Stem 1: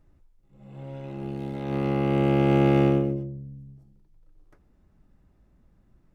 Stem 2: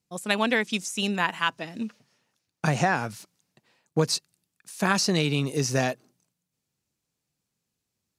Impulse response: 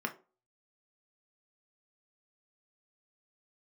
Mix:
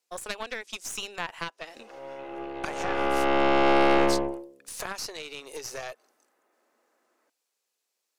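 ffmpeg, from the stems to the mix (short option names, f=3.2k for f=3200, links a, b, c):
-filter_complex "[0:a]lowpass=3k,adelay=1150,volume=2.5dB,asplit=2[a][b];[b]volume=-9dB[c];[1:a]acompressor=threshold=-33dB:ratio=10,volume=2.5dB[d];[2:a]atrim=start_sample=2205[e];[c][e]afir=irnorm=-1:irlink=0[f];[a][d][f]amix=inputs=3:normalize=0,highpass=f=430:w=0.5412,highpass=f=430:w=1.3066,aeval=exprs='0.266*(cos(1*acos(clip(val(0)/0.266,-1,1)))-cos(1*PI/2))+0.0531*(cos(4*acos(clip(val(0)/0.266,-1,1)))-cos(4*PI/2))+0.0168*(cos(8*acos(clip(val(0)/0.266,-1,1)))-cos(8*PI/2))':c=same"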